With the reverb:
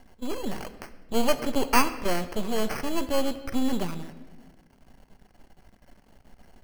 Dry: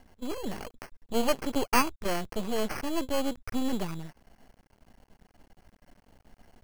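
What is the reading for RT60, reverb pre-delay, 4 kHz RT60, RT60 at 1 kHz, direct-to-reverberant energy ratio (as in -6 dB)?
1.2 s, 5 ms, 0.95 s, 1.1 s, 10.0 dB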